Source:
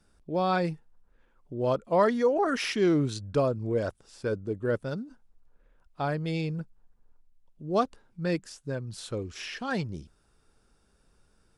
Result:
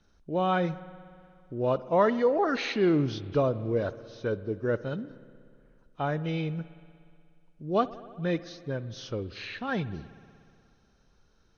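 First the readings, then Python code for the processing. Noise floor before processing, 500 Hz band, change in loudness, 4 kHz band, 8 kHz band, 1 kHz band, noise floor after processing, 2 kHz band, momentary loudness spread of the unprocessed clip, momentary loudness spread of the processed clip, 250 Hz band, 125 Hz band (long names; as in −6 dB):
−67 dBFS, 0.0 dB, 0.0 dB, −1.5 dB, can't be measured, 0.0 dB, −65 dBFS, 0.0 dB, 13 LU, 13 LU, 0.0 dB, 0.0 dB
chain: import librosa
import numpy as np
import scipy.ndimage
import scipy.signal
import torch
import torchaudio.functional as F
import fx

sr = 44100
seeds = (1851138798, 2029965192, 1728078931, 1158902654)

y = fx.freq_compress(x, sr, knee_hz=2300.0, ratio=1.5)
y = fx.rev_spring(y, sr, rt60_s=2.3, pass_ms=(60,), chirp_ms=45, drr_db=15.5)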